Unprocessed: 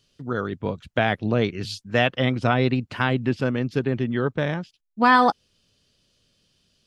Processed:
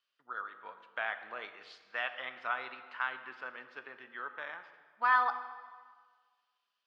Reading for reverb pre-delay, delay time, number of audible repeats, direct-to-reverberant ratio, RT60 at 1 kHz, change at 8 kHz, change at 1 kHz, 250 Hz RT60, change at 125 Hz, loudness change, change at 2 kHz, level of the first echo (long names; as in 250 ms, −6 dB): 12 ms, no echo audible, no echo audible, 9.0 dB, 1.6 s, can't be measured, −10.5 dB, 1.7 s, below −40 dB, −13.0 dB, −9.0 dB, no echo audible